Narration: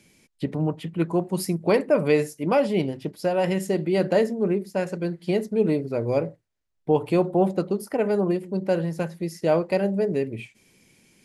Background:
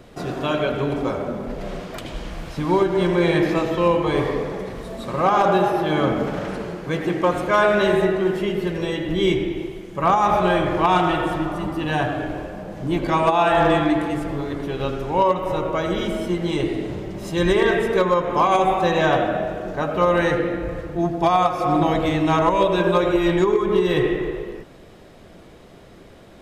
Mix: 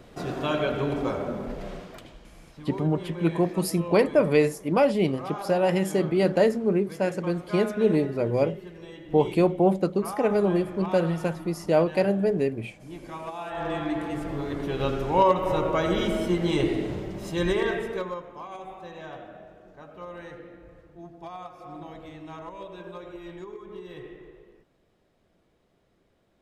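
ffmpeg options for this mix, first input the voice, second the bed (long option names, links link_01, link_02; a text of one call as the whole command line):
ffmpeg -i stem1.wav -i stem2.wav -filter_complex "[0:a]adelay=2250,volume=0dB[link_01];[1:a]volume=13dB,afade=type=out:start_time=1.44:duration=0.74:silence=0.188365,afade=type=in:start_time=13.49:duration=1.42:silence=0.141254,afade=type=out:start_time=16.7:duration=1.63:silence=0.0891251[link_02];[link_01][link_02]amix=inputs=2:normalize=0" out.wav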